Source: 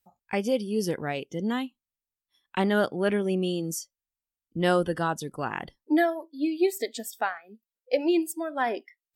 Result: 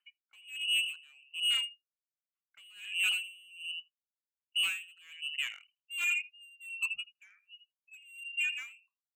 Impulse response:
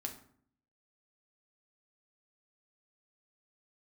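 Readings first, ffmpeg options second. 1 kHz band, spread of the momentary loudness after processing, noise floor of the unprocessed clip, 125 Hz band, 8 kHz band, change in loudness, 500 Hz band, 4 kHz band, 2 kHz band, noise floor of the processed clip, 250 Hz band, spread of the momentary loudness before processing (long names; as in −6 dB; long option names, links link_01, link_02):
−26.5 dB, 17 LU, below −85 dBFS, below −40 dB, −4.0 dB, −4.5 dB, below −40 dB, +8.0 dB, −0.5 dB, below −85 dBFS, below −40 dB, 10 LU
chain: -filter_complex "[0:a]asplit=2[link_01][link_02];[link_02]adelay=81,lowpass=frequency=860:poles=1,volume=-10dB,asplit=2[link_03][link_04];[link_04]adelay=81,lowpass=frequency=860:poles=1,volume=0.17[link_05];[link_03][link_05]amix=inputs=2:normalize=0[link_06];[link_01][link_06]amix=inputs=2:normalize=0,agate=range=-33dB:threshold=-53dB:ratio=3:detection=peak,asoftclip=type=hard:threshold=-19.5dB,lowpass=frequency=2600:width_type=q:width=0.5098,lowpass=frequency=2600:width_type=q:width=0.6013,lowpass=frequency=2600:width_type=q:width=0.9,lowpass=frequency=2600:width_type=q:width=2.563,afreqshift=-3100,acompressor=mode=upward:threshold=-40dB:ratio=2.5,asubboost=boost=10.5:cutoff=160,afftdn=noise_reduction=16:noise_floor=-36,acontrast=52,aderivative,asoftclip=type=tanh:threshold=-31.5dB,aeval=exprs='val(0)*pow(10,-29*(0.5-0.5*cos(2*PI*1.3*n/s))/20)':channel_layout=same,volume=6.5dB"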